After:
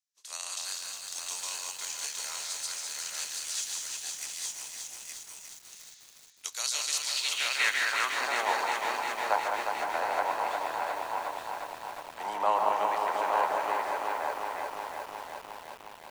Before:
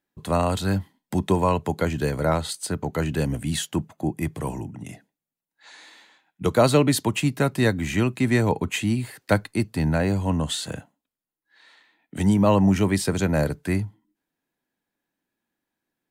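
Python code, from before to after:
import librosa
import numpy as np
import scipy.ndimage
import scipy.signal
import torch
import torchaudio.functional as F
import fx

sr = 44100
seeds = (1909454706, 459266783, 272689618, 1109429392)

y = fx.spec_flatten(x, sr, power=0.62)
y = scipy.signal.sosfilt(scipy.signal.butter(2, 580.0, 'highpass', fs=sr, output='sos'), y)
y = fx.echo_multitap(y, sr, ms=(143, 167, 200, 267, 508, 866), db=(-6.5, -13.5, -5.5, -18.5, -8.5, -5.5))
y = fx.filter_sweep_bandpass(y, sr, from_hz=6000.0, to_hz=860.0, start_s=6.98, end_s=8.28, q=2.6)
y = fx.echo_crushed(y, sr, ms=358, feedback_pct=80, bits=8, wet_db=-5.5)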